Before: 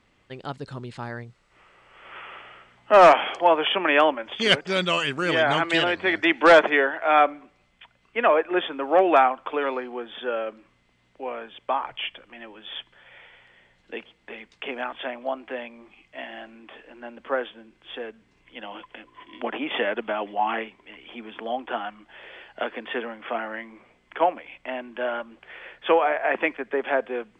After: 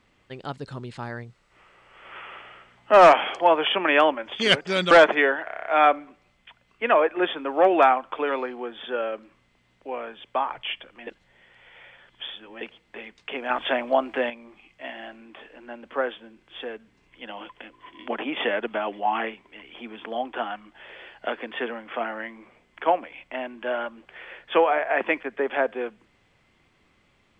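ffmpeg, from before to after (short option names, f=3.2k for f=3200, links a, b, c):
-filter_complex "[0:a]asplit=13[a][b][c][d][e][f][g][h][i][j][k][l][m];[a]atrim=end=4.912[n];[b]atrim=start=6.458:end=7.032[o];[c]atrim=start=6.998:end=7.032[p];[d]atrim=start=6.998:end=7.032[q];[e]atrim=start=6.998:end=7.032[r];[f]atrim=start=6.998:end=7.032[s];[g]atrim=start=6.998:end=7.032[t];[h]atrim=start=6.998:end=7.032[u];[i]atrim=start=6.998:end=12.412[v];[j]atrim=start=12.408:end=13.952,asetpts=PTS-STARTPTS,areverse[w];[k]atrim=start=13.948:end=14.842[x];[l]atrim=start=14.838:end=15.642,asetpts=PTS-STARTPTS,volume=7.5dB[y];[m]atrim=start=15.638[z];[n][o]acrossfade=d=0.004:c1=hsin:c2=hsin[aa];[aa][p]acrossfade=d=0.004:c1=hsin:c2=hsin[ab];[ab][q]acrossfade=d=0.004:c1=hsin:c2=hsin[ac];[ac][r]acrossfade=d=0.004:c1=hsin:c2=hsin[ad];[ad][s]acrossfade=d=0.004:c1=hsin:c2=hsin[ae];[ae][t]acrossfade=d=0.004:c1=hsin:c2=hsin[af];[af][u]acrossfade=d=0.004:c1=hsin:c2=hsin[ag];[ag][v]acrossfade=d=0.004:c1=hsin:c2=hsin[ah];[ah][w]acrossfade=d=0.004:c1=hsin:c2=hsin[ai];[ai][x]acrossfade=d=0.004:c1=hsin:c2=hsin[aj];[aj][y]acrossfade=d=0.004:c1=hsin:c2=hsin[ak];[ak][z]acrossfade=d=0.004:c1=hsin:c2=hsin"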